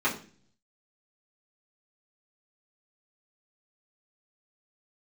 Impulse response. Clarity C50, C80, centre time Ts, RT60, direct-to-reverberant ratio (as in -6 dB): 10.5 dB, 15.0 dB, 19 ms, 0.40 s, -8.0 dB